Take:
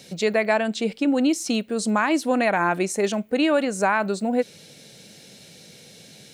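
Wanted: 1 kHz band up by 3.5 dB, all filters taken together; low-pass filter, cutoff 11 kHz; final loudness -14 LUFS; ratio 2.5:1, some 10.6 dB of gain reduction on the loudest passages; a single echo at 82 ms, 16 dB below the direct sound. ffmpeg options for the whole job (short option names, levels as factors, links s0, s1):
-af "lowpass=11000,equalizer=f=1000:t=o:g=4.5,acompressor=threshold=0.0282:ratio=2.5,aecho=1:1:82:0.158,volume=6.68"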